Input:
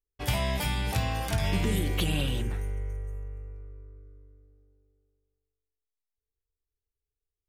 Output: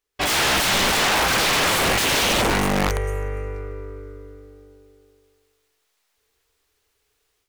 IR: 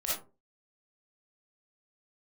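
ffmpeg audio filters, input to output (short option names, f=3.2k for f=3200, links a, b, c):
-filter_complex "[0:a]aeval=exprs='(mod(25.1*val(0)+1,2)-1)/25.1':c=same,dynaudnorm=f=140:g=3:m=13dB,asplit=2[a][b];[b]highpass=f=720:p=1,volume=22dB,asoftclip=type=tanh:threshold=-14.5dB[c];[a][c]amix=inputs=2:normalize=0,lowpass=f=4.9k:p=1,volume=-6dB"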